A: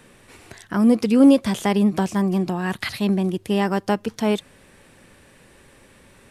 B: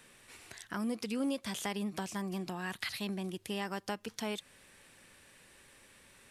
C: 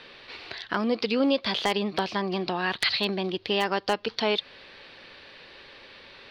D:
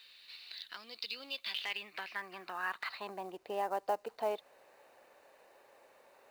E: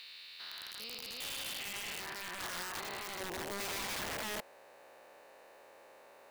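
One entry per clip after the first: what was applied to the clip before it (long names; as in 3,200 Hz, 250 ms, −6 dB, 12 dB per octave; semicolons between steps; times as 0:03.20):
tilt shelving filter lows −5.5 dB, about 1,100 Hz; downward compressor 2 to 1, threshold −28 dBFS, peak gain reduction 8 dB; level −9 dB
drawn EQ curve 200 Hz 0 dB, 440 Hz +9 dB, 1,900 Hz +6 dB, 4,500 Hz +12 dB, 7,600 Hz −26 dB; wave folding −17 dBFS; level +5.5 dB
band-pass filter sweep 3,900 Hz → 700 Hz, 0:01.17–0:03.48; log-companded quantiser 6 bits; notch filter 3,300 Hz, Q 8.5; level −3.5 dB
spectrum averaged block by block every 400 ms; wrap-around overflow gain 40 dB; level +6 dB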